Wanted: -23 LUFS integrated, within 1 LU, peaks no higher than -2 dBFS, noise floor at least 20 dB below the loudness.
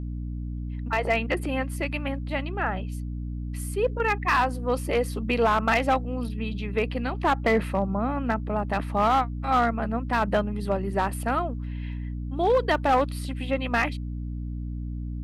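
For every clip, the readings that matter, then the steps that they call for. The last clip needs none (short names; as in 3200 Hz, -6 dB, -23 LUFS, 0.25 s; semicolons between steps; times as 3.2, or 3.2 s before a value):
clipped 0.7%; flat tops at -15.0 dBFS; hum 60 Hz; harmonics up to 300 Hz; hum level -29 dBFS; loudness -26.5 LUFS; peak -15.0 dBFS; loudness target -23.0 LUFS
-> clip repair -15 dBFS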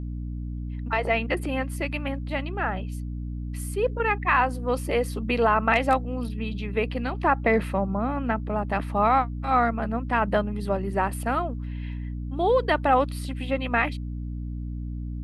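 clipped 0.0%; hum 60 Hz; harmonics up to 300 Hz; hum level -29 dBFS
-> de-hum 60 Hz, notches 5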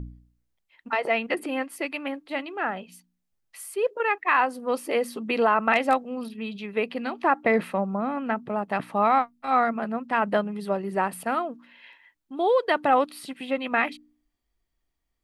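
hum none; loudness -26.0 LUFS; peak -8.0 dBFS; loudness target -23.0 LUFS
-> gain +3 dB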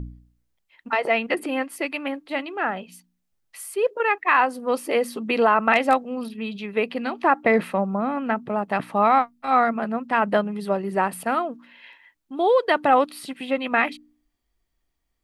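loudness -23.0 LUFS; peak -5.0 dBFS; noise floor -75 dBFS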